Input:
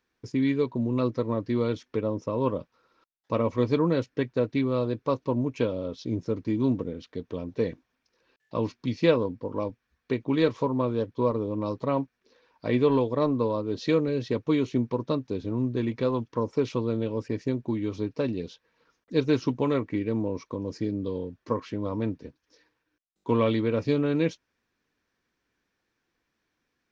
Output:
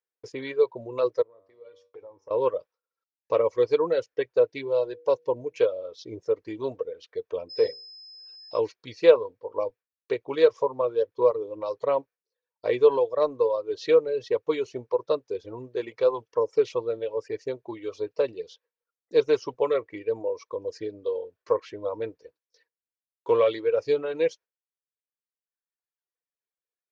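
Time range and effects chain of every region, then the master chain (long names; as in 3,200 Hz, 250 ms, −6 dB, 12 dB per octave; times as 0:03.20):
0:01.22–0:02.31: high-shelf EQ 2,800 Hz −7 dB + downward compressor 5 to 1, threshold −29 dBFS + tuned comb filter 96 Hz, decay 0.91 s, mix 80%
0:04.47–0:05.58: Butterworth band-reject 1,200 Hz, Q 4.6 + hum removal 160.8 Hz, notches 3
0:07.49–0:08.58: mains-hum notches 60/120/180/240/300/360/420/480/540 Hz + steady tone 5,100 Hz −37 dBFS
whole clip: reverb reduction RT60 1.8 s; noise gate with hold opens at −52 dBFS; low shelf with overshoot 330 Hz −11.5 dB, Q 3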